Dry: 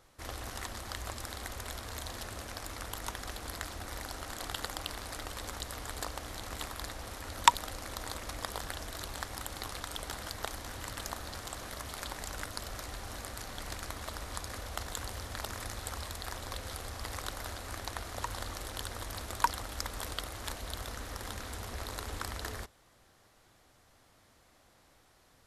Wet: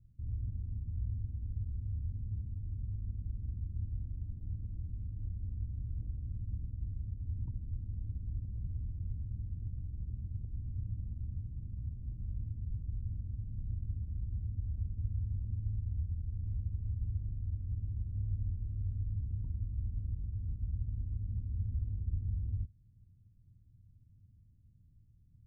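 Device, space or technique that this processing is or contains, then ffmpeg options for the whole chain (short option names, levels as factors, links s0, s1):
the neighbour's flat through the wall: -af "lowpass=f=170:w=0.5412,lowpass=f=170:w=1.3066,equalizer=f=100:t=o:w=0.73:g=7,volume=1.88"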